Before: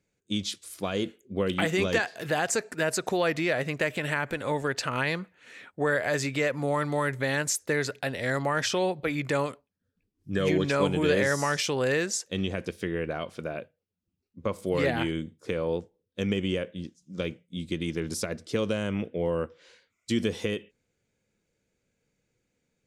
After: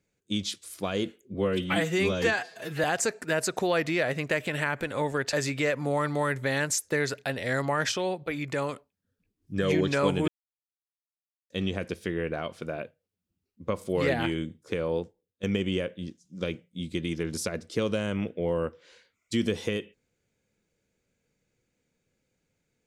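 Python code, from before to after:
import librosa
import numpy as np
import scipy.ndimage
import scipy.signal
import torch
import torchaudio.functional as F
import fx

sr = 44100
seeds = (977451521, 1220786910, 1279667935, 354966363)

y = fx.edit(x, sr, fx.stretch_span(start_s=1.34, length_s=1.0, factor=1.5),
    fx.cut(start_s=4.83, length_s=1.27),
    fx.clip_gain(start_s=8.69, length_s=0.77, db=-3.0),
    fx.silence(start_s=11.05, length_s=1.22),
    fx.fade_out_to(start_s=15.73, length_s=0.47, floor_db=-14.0), tone=tone)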